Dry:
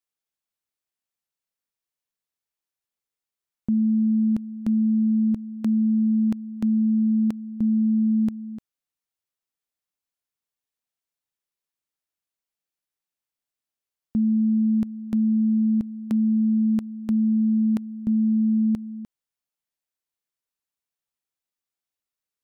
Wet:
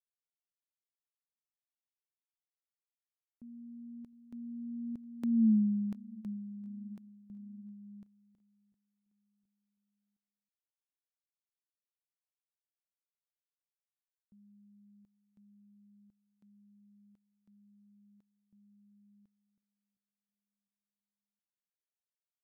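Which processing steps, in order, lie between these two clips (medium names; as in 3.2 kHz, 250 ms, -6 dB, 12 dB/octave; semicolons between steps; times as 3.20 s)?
Doppler pass-by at 5.48 s, 25 m/s, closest 2.9 m; feedback delay 712 ms, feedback 50%, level -23.5 dB; trim -3.5 dB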